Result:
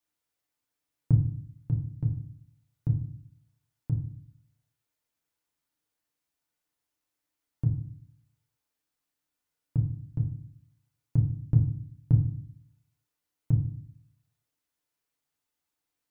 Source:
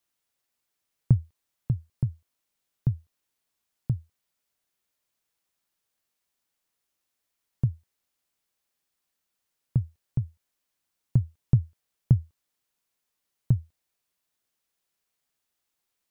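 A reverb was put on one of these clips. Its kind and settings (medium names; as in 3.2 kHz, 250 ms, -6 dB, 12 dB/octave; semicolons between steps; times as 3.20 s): FDN reverb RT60 0.5 s, low-frequency decay 1.6×, high-frequency decay 0.3×, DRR 1 dB; trim -5.5 dB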